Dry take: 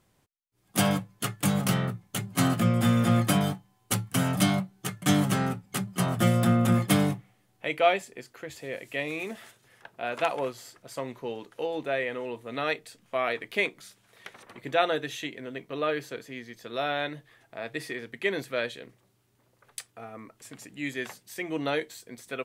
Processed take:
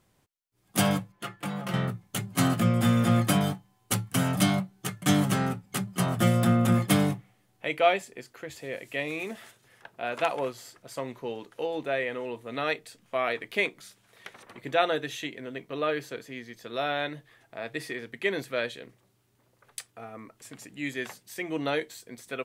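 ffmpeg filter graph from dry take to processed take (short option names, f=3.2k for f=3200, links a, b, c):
-filter_complex "[0:a]asettb=1/sr,asplit=3[a][b][c];[a]atrim=end=1.124[d];[b]atrim=start=1.12:end=1.74,asetpts=PTS-STARTPTS,afade=t=in:d=0.004:c=qsin,afade=t=out:st=0.616:d=0.004:c=qsin,bass=f=250:g=-9,treble=f=4k:g=-13,aecho=1:1:5.8:0.64,atrim=end_sample=27342,acompressor=threshold=-38dB:ratio=1.5:attack=3.2:release=140:knee=1:detection=peak[e];[c]atrim=start=1.736[f];[d][e]acrossfade=d=0.004:c1=hsin:c2=qsin[g];[g][f]acrossfade=d=0.004:c1=qsin:c2=hsin"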